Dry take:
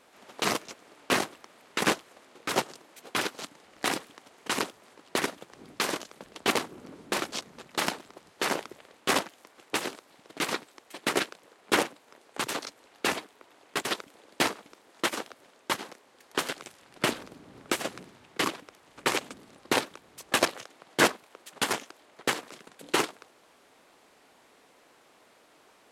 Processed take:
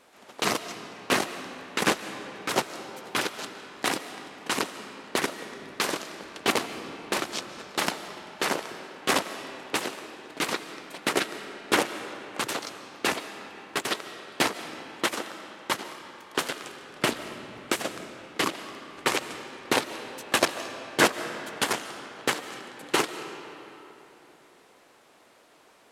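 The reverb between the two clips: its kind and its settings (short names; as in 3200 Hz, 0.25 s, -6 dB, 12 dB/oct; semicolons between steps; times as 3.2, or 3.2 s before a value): digital reverb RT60 3.5 s, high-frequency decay 0.65×, pre-delay 0.105 s, DRR 10 dB; gain +1.5 dB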